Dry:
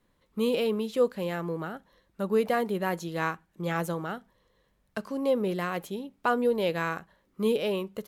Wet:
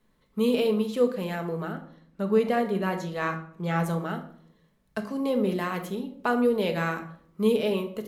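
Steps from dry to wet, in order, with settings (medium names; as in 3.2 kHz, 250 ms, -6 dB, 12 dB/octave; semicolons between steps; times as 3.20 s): 1.72–3.86 s: treble shelf 8.8 kHz -10 dB; simulated room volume 970 m³, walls furnished, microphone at 1.5 m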